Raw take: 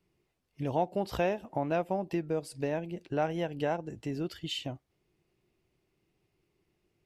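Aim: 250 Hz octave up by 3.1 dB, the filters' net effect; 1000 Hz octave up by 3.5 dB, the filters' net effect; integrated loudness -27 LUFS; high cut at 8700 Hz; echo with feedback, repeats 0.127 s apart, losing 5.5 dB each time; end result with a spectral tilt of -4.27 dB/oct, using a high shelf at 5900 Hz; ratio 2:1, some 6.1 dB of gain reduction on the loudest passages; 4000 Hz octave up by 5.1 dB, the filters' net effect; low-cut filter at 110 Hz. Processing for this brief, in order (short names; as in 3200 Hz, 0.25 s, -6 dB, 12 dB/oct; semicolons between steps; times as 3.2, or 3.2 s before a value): HPF 110 Hz; LPF 8700 Hz; bell 250 Hz +4.5 dB; bell 1000 Hz +4.5 dB; bell 4000 Hz +4 dB; high shelf 5900 Hz +9 dB; compressor 2:1, threshold -32 dBFS; feedback echo 0.127 s, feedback 53%, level -5.5 dB; gain +7 dB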